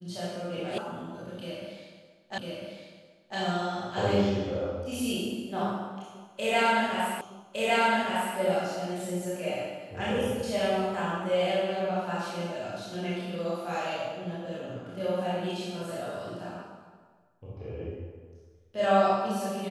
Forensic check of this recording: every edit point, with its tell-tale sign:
0:00.78: cut off before it has died away
0:02.38: the same again, the last 1 s
0:07.21: the same again, the last 1.16 s

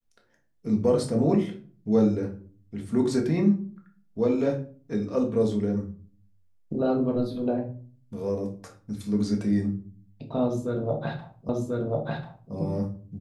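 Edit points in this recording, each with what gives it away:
0:11.49: the same again, the last 1.04 s

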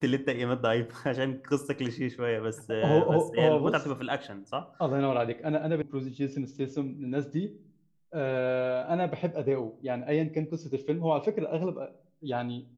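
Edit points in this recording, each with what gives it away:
0:05.82: cut off before it has died away

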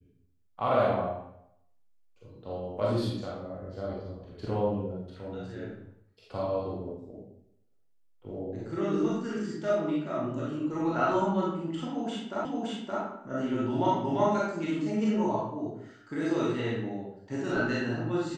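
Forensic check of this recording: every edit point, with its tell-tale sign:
0:12.45: the same again, the last 0.57 s

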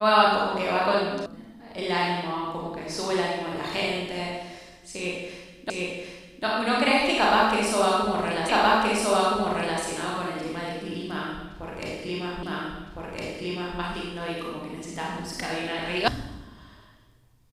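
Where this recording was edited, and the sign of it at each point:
0:01.26: cut off before it has died away
0:05.70: the same again, the last 0.75 s
0:08.49: the same again, the last 1.32 s
0:12.43: the same again, the last 1.36 s
0:16.08: cut off before it has died away

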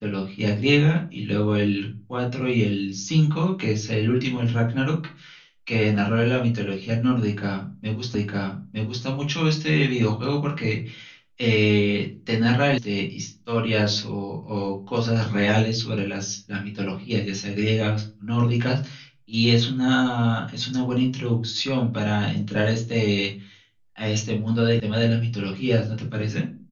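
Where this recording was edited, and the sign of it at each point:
0:08.15: the same again, the last 0.91 s
0:12.78: cut off before it has died away
0:24.80: cut off before it has died away

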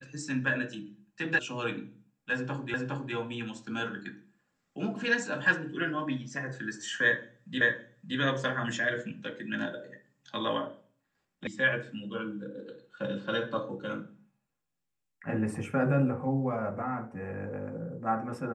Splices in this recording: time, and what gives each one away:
0:01.39: cut off before it has died away
0:02.74: the same again, the last 0.41 s
0:07.61: the same again, the last 0.57 s
0:11.47: cut off before it has died away

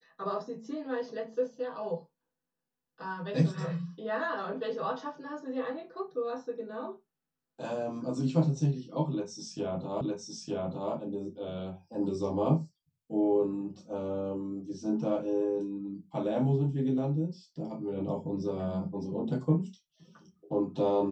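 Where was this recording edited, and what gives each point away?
0:10.01: the same again, the last 0.91 s

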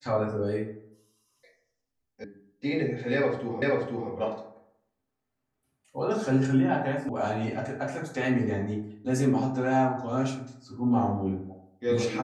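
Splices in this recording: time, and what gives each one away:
0:02.24: cut off before it has died away
0:03.62: the same again, the last 0.48 s
0:07.09: cut off before it has died away

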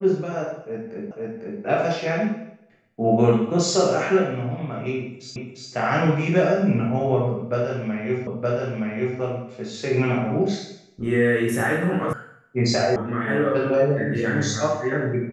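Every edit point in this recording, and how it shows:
0:01.11: the same again, the last 0.5 s
0:05.36: the same again, the last 0.35 s
0:08.27: the same again, the last 0.92 s
0:12.13: cut off before it has died away
0:12.96: cut off before it has died away

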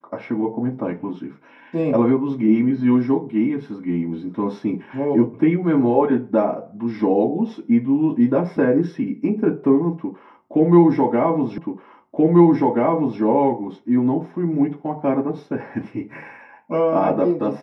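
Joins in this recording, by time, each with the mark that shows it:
0:11.58: the same again, the last 1.63 s

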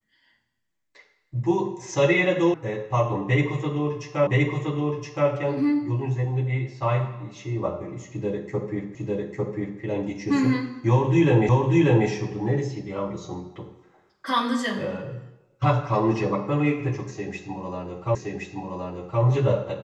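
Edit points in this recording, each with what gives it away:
0:02.54: cut off before it has died away
0:04.27: the same again, the last 1.02 s
0:08.95: the same again, the last 0.85 s
0:11.49: the same again, the last 0.59 s
0:18.15: the same again, the last 1.07 s

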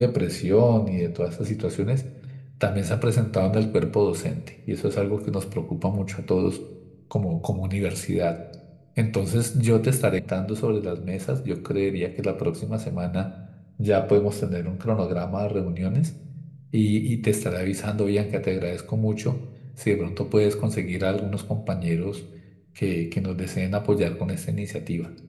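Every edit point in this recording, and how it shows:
0:10.19: cut off before it has died away

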